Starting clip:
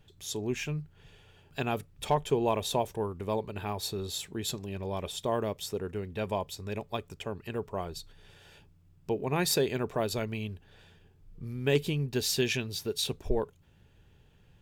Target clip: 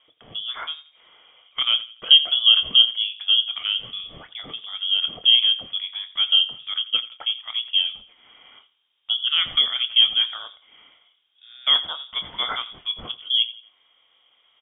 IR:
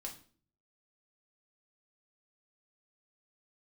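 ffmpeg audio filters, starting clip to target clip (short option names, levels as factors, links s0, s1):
-filter_complex "[0:a]highpass=f=590:t=q:w=4.9,asplit=2[s0][s1];[s1]adelay=25,volume=0.251[s2];[s0][s2]amix=inputs=2:normalize=0,asplit=2[s3][s4];[s4]adelay=86,lowpass=f=2800:p=1,volume=0.168,asplit=2[s5][s6];[s6]adelay=86,lowpass=f=2800:p=1,volume=0.35,asplit=2[s7][s8];[s8]adelay=86,lowpass=f=2800:p=1,volume=0.35[s9];[s5][s7][s9]amix=inputs=3:normalize=0[s10];[s3][s10]amix=inputs=2:normalize=0,lowpass=f=3200:t=q:w=0.5098,lowpass=f=3200:t=q:w=0.6013,lowpass=f=3200:t=q:w=0.9,lowpass=f=3200:t=q:w=2.563,afreqshift=-3800,volume=1.68"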